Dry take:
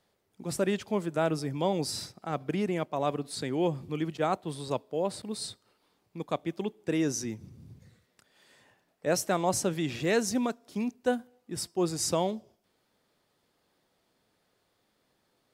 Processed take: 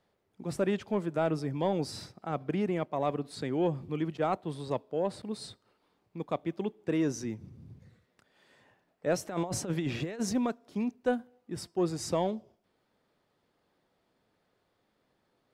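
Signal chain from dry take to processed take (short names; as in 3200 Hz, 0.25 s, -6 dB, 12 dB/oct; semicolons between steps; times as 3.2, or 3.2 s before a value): high shelf 4200 Hz -12 dB; 9.25–10.33 negative-ratio compressor -31 dBFS, ratio -0.5; soft clip -16 dBFS, distortion -24 dB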